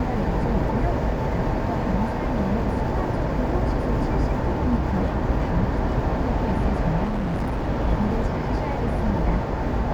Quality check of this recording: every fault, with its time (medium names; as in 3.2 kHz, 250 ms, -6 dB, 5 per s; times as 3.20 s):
7.04–7.69 s: clipped -22 dBFS